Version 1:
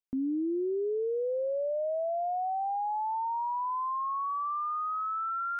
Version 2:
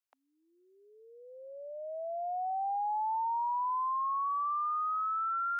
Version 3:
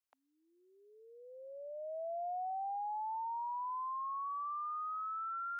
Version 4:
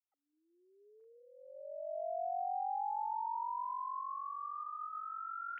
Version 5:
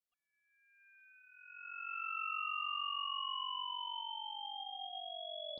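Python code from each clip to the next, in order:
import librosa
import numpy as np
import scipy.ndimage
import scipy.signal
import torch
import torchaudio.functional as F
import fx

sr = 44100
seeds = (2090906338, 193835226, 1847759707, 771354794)

y1 = scipy.signal.sosfilt(scipy.signal.butter(6, 740.0, 'highpass', fs=sr, output='sos'), x)
y2 = fx.rider(y1, sr, range_db=4, speed_s=0.5)
y2 = y2 * librosa.db_to_amplitude(-6.5)
y3 = fx.sine_speech(y2, sr)
y4 = y3 * np.sin(2.0 * np.pi * 2000.0 * np.arange(len(y3)) / sr)
y4 = y4 * librosa.db_to_amplitude(1.0)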